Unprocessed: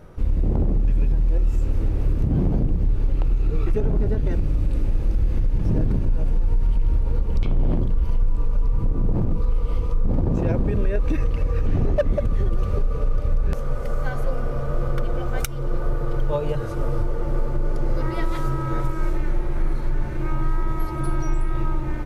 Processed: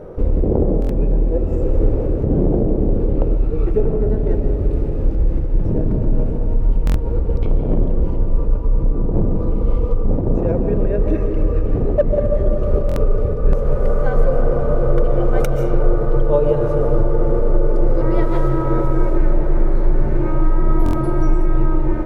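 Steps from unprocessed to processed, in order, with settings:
high-shelf EQ 2,100 Hz −11 dB
convolution reverb RT60 2.8 s, pre-delay 100 ms, DRR 5 dB
speech leveller 0.5 s
parametric band 470 Hz +14.5 dB 1.4 octaves, from 0:03.37 +7.5 dB
buffer that repeats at 0:00.80/0:06.85/0:12.87/0:20.84, samples 1,024, times 3
level +2 dB

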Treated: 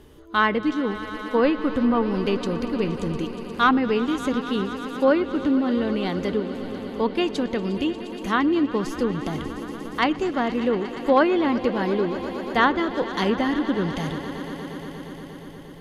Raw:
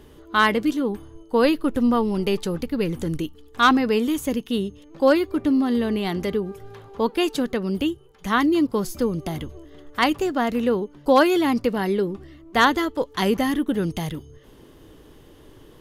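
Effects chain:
echo that builds up and dies away 118 ms, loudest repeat 5, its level −17.5 dB
treble cut that deepens with the level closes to 2,700 Hz, closed at −14 dBFS
level −1.5 dB

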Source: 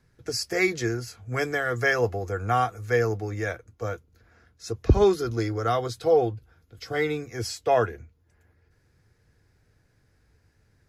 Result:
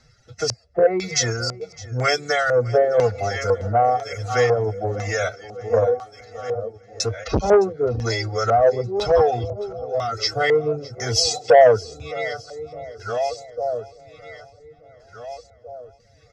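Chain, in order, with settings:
feedback delay that plays each chunk backwards 690 ms, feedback 47%, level −13.5 dB
low-shelf EQ 170 Hz −6.5 dB
comb filter 1.5 ms, depth 69%
phase-vocoder stretch with locked phases 1.5×
in parallel at +3 dB: downward compressor, threshold −29 dBFS, peak gain reduction 14.5 dB
on the sum: reverb reduction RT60 0.93 s
auto-filter low-pass square 1 Hz 550–5,700 Hz
repeating echo 612 ms, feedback 50%, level −20 dB
saturating transformer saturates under 660 Hz
level +2 dB

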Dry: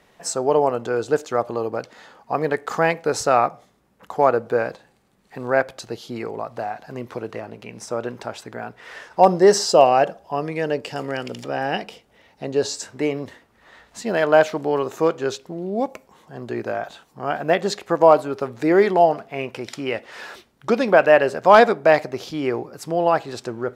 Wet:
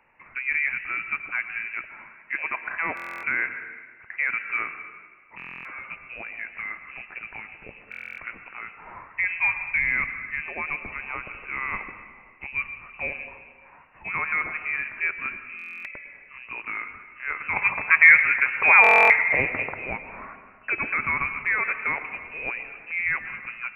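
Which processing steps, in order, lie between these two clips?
tilt shelving filter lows −5.5 dB, about 690 Hz
brickwall limiter −8.5 dBFS, peak gain reduction 11 dB
voice inversion scrambler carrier 2,800 Hz
0:17.56–0:19.74: octave-band graphic EQ 125/500/1,000/2,000 Hz +11/+7/+9/+11 dB
convolution reverb RT60 1.6 s, pre-delay 98 ms, DRR 9 dB
buffer that repeats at 0:02.95/0:05.37/0:07.90/0:15.57/0:18.82, samples 1,024, times 11
level −6.5 dB

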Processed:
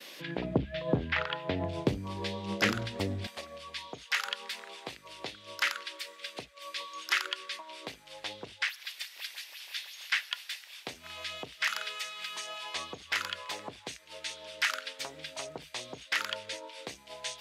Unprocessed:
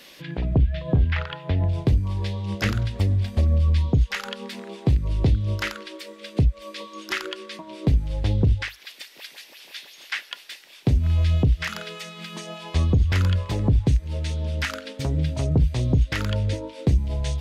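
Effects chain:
high-pass filter 250 Hz 12 dB per octave, from 0:03.27 1,000 Hz
downward expander −50 dBFS
highs frequency-modulated by the lows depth 0.22 ms

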